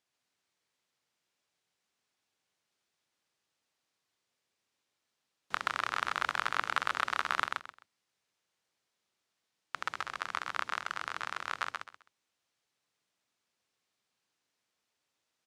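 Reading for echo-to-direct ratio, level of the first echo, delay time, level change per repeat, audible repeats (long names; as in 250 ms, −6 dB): −3.5 dB, −4.0 dB, 130 ms, −12.5 dB, 3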